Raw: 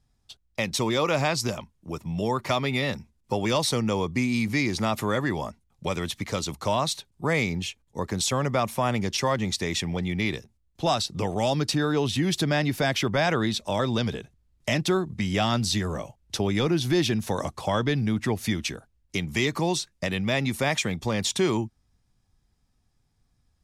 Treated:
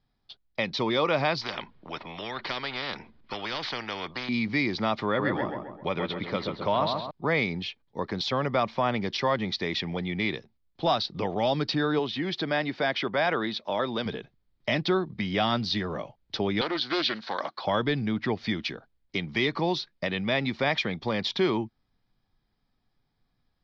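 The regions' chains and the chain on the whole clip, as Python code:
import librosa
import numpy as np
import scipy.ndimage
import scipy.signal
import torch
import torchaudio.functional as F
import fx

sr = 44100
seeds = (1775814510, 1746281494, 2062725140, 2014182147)

y = fx.chain(x, sr, fx.air_absorb(metres=230.0),
    fx.spectral_comp(ratio=4.0), at=(1.41, 4.29))
y = fx.chain(y, sr, fx.lowpass(hz=3800.0, slope=12),
    fx.echo_filtered(ms=132, feedback_pct=49, hz=2100.0, wet_db=-4.0), at=(5.06, 7.11))
y = fx.chain(y, sr, fx.highpass(hz=290.0, slope=6),
    fx.peak_eq(hz=5000.0, db=-3.5, octaves=1.6), at=(11.99, 14.06))
y = fx.chain(y, sr, fx.cabinet(low_hz=370.0, low_slope=12, high_hz=7200.0, hz=(450.0, 1500.0, 4200.0), db=(-8, 8, 8)),
    fx.doppler_dist(depth_ms=0.32), at=(16.61, 17.65))
y = scipy.signal.sosfilt(scipy.signal.butter(8, 4800.0, 'lowpass', fs=sr, output='sos'), y)
y = fx.peak_eq(y, sr, hz=62.0, db=-13.5, octaves=1.8)
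y = fx.notch(y, sr, hz=2700.0, q=14.0)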